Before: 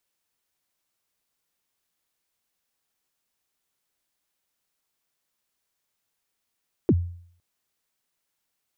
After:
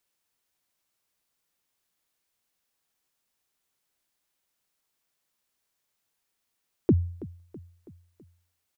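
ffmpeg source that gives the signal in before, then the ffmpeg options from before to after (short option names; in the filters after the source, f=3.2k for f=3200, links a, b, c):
-f lavfi -i "aevalsrc='0.237*pow(10,-3*t/0.58)*sin(2*PI*(430*0.05/log(87/430)*(exp(log(87/430)*min(t,0.05)/0.05)-1)+87*max(t-0.05,0)))':d=0.51:s=44100"
-af "aecho=1:1:327|654|981|1308:0.126|0.0667|0.0354|0.0187"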